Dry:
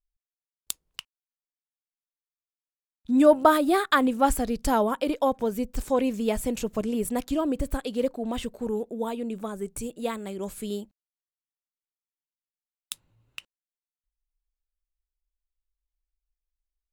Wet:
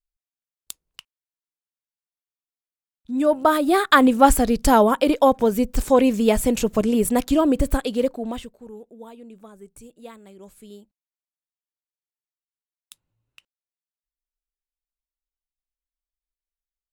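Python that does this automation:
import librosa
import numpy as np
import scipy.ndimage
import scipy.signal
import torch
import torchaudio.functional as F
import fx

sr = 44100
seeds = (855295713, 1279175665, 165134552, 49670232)

y = fx.gain(x, sr, db=fx.line((3.12, -4.0), (4.03, 8.0), (7.73, 8.0), (8.33, 1.0), (8.55, -11.0)))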